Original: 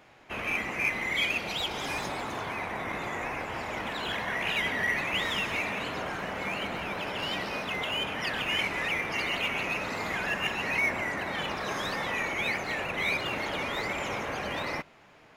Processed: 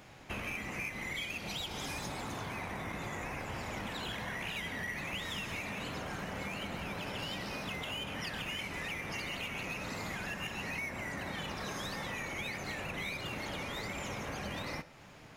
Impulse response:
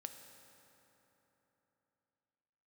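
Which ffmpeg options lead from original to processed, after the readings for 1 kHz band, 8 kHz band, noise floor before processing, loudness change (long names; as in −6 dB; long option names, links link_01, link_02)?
−9.0 dB, −2.5 dB, −56 dBFS, −8.5 dB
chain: -filter_complex "[0:a]bass=frequency=250:gain=9,treble=frequency=4000:gain=8,acompressor=threshold=-37dB:ratio=6,asplit=2[link_01][link_02];[1:a]atrim=start_sample=2205,atrim=end_sample=6615[link_03];[link_02][link_03]afir=irnorm=-1:irlink=0,volume=7.5dB[link_04];[link_01][link_04]amix=inputs=2:normalize=0,volume=-7.5dB"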